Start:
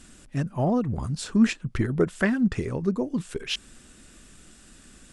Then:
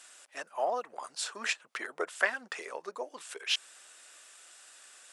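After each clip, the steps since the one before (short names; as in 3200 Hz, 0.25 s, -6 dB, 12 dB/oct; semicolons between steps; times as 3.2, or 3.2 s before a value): HPF 600 Hz 24 dB/oct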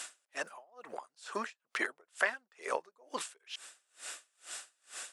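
compressor 3:1, threshold -42 dBFS, peak gain reduction 15.5 dB; dB-linear tremolo 2.2 Hz, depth 37 dB; gain +13 dB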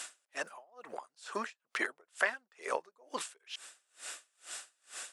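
nothing audible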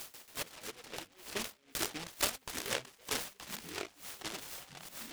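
echoes that change speed 0.139 s, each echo -5 st, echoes 3, each echo -6 dB; noise-modulated delay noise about 2200 Hz, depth 0.29 ms; gain -2 dB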